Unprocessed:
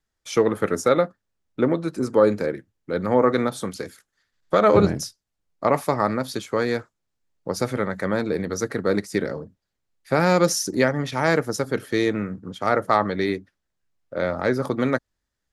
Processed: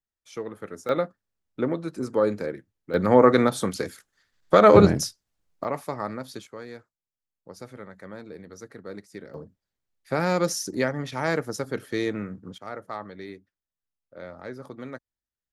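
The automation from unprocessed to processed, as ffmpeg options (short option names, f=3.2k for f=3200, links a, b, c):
-af "asetnsamples=n=441:p=0,asendcmd='0.89 volume volume -5.5dB;2.94 volume volume 2.5dB;5.64 volume volume -9.5dB;6.47 volume volume -17dB;9.34 volume volume -5.5dB;12.58 volume volume -16dB',volume=-15dB"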